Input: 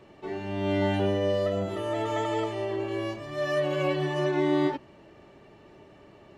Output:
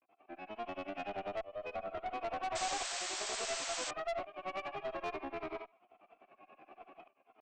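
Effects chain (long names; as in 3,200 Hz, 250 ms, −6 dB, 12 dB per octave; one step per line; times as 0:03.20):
granular cloud 70 ms, grains 12 per second, pitch spread up and down by 3 semitones
graphic EQ with 10 bands 250 Hz +9 dB, 500 Hz −4 dB, 2,000 Hz +10 dB, 4,000 Hz −4 dB, 8,000 Hz −8 dB
feedback echo with a high-pass in the loop 65 ms, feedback 40%, high-pass 740 Hz, level −7 dB
shaped tremolo saw up 0.82 Hz, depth 90%
downward compressor 5 to 1, threshold −33 dBFS, peak gain reduction 11 dB
formant filter a
low-shelf EQ 240 Hz −5.5 dB
tempo change 0.86×
tube saturation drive 49 dB, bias 0.45
sound drawn into the spectrogram noise, 0:02.55–0:03.91, 510–8,400 Hz −56 dBFS
level +15.5 dB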